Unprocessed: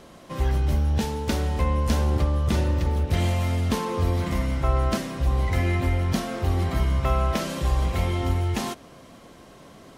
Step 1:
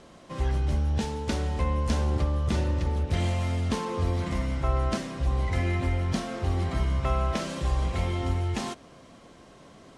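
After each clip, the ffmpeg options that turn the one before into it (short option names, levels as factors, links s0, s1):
-af "lowpass=f=9600:w=0.5412,lowpass=f=9600:w=1.3066,volume=0.668"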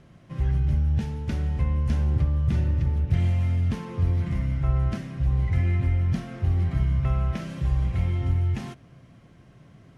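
-af "equalizer=f=125:t=o:w=1:g=11,equalizer=f=250:t=o:w=1:g=-4,equalizer=f=500:t=o:w=1:g=-7,equalizer=f=1000:t=o:w=1:g=-8,equalizer=f=4000:t=o:w=1:g=-8,equalizer=f=8000:t=o:w=1:g=-12"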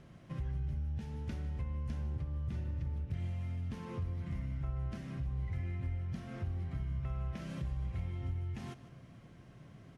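-af "acompressor=threshold=0.0178:ratio=3,aecho=1:1:153:0.158,volume=0.668"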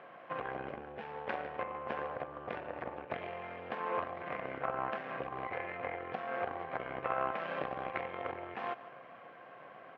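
-af "aeval=exprs='0.0447*(cos(1*acos(clip(val(0)/0.0447,-1,1)))-cos(1*PI/2))+0.00631*(cos(3*acos(clip(val(0)/0.0447,-1,1)))-cos(3*PI/2))+0.01*(cos(4*acos(clip(val(0)/0.0447,-1,1)))-cos(4*PI/2))+0.00794*(cos(6*acos(clip(val(0)/0.0447,-1,1)))-cos(6*PI/2))':c=same,highpass=500,equalizer=f=510:t=q:w=4:g=9,equalizer=f=740:t=q:w=4:g=10,equalizer=f=1100:t=q:w=4:g=9,equalizer=f=1600:t=q:w=4:g=7,equalizer=f=2400:t=q:w=4:g=3,lowpass=f=3000:w=0.5412,lowpass=f=3000:w=1.3066,volume=3.35"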